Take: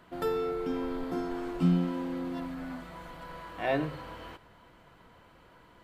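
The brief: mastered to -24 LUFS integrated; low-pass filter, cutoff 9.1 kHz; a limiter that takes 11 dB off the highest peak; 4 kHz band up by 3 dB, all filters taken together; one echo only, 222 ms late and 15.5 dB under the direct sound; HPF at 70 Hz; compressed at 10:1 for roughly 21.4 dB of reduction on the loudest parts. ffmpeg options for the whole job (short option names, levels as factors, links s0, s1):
-af "highpass=70,lowpass=9100,equalizer=f=4000:t=o:g=4,acompressor=threshold=0.00708:ratio=10,alimiter=level_in=7.94:limit=0.0631:level=0:latency=1,volume=0.126,aecho=1:1:222:0.168,volume=22.4"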